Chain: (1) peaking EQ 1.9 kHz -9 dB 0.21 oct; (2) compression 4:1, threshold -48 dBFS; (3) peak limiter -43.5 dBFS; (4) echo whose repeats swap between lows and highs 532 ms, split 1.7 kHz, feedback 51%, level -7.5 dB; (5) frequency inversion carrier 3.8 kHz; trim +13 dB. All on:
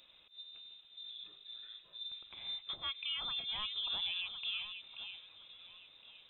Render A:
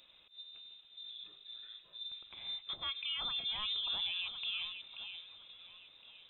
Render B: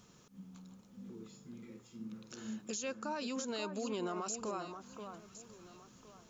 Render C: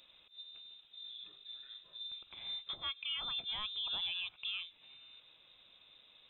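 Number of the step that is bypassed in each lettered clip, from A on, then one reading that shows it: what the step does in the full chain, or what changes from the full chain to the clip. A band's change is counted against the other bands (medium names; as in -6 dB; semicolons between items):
2, mean gain reduction 6.5 dB; 5, 4 kHz band -27.5 dB; 4, momentary loudness spread change +3 LU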